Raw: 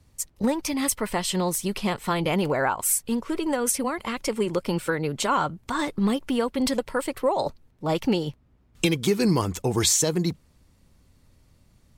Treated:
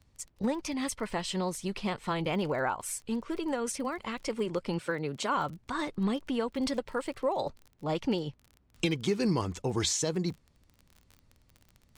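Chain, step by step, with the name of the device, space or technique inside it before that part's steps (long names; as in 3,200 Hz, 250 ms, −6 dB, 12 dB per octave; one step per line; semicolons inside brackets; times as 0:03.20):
lo-fi chain (low-pass filter 6,800 Hz 12 dB per octave; tape wow and flutter; surface crackle 30 per second −34 dBFS)
0:04.79–0:05.35: high-pass filter 110 Hz
level −6.5 dB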